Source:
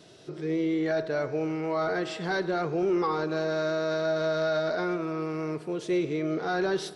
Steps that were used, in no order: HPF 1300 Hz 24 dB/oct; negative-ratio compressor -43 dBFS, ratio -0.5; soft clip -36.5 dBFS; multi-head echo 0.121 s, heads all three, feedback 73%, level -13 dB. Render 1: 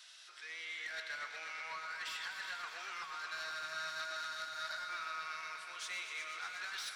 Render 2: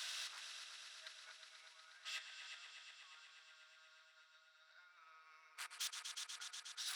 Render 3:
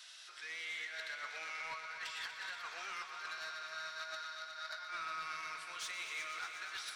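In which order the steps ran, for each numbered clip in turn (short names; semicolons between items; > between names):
HPF > soft clip > negative-ratio compressor > multi-head echo; negative-ratio compressor > multi-head echo > soft clip > HPF; HPF > negative-ratio compressor > soft clip > multi-head echo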